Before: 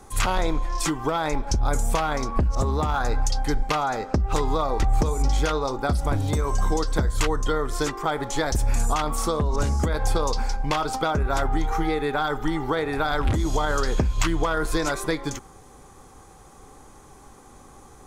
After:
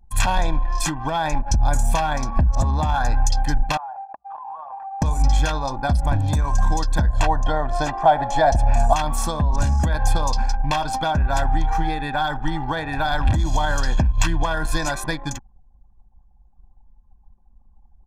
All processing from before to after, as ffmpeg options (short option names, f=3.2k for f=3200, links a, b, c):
-filter_complex "[0:a]asettb=1/sr,asplit=3[a][b][c];[a]atrim=end=3.774[d];[b]atrim=start=3.77:end=5.02,asetpts=PTS-STARTPTS,afade=t=in:d=0.004:c=qsin,afade=t=out:st=1.246:d=0.004:c=qsin,asuperpass=centerf=980:order=4:qfactor=1.7,acompressor=threshold=-32dB:ratio=8:attack=3.2:release=140:knee=1:detection=peak[e];[c]atrim=start=5.016[f];[d][e]acrossfade=d=0.004:c1=hsin:c2=qsin[g];[g][f]acrossfade=d=0.004:c1=qsin:c2=hsin,asettb=1/sr,asplit=3[h][i][j];[h]atrim=end=7.104[k];[i]atrim=start=7.1:end=8.93,asetpts=PTS-STARTPTS,afade=t=in:d=0.004:c=qsin,afade=t=out:st=1.826:d=0.004:c=qsin,lowpass=f=3.5k:p=1,equalizer=f=680:w=2.6:g=14.5[l];[j]atrim=start=8.926[m];[k][l]acrossfade=d=0.004:c1=hsin:c2=qsin[n];[n][m]acrossfade=d=0.004:c1=qsin:c2=hsin,anlmdn=3.98,aecho=1:1:1.2:0.81"